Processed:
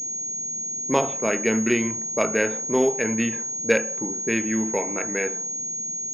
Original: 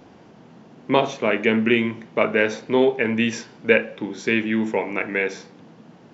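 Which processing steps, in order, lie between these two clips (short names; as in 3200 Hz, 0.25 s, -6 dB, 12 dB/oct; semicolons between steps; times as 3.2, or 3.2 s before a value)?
low-pass opened by the level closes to 470 Hz, open at -13 dBFS; pulse-width modulation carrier 6600 Hz; gain -3 dB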